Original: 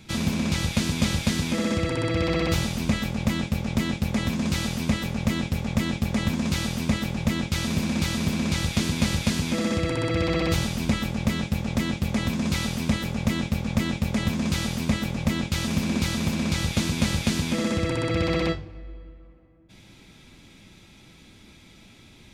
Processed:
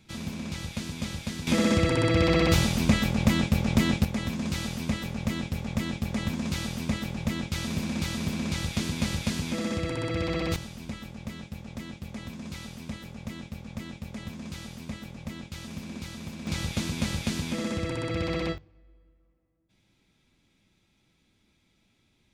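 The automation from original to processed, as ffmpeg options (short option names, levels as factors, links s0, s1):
-af "asetnsamples=n=441:p=0,asendcmd='1.47 volume volume 2dB;4.05 volume volume -5dB;10.56 volume volume -13.5dB;16.47 volume volume -5.5dB;18.58 volume volume -18dB',volume=0.316"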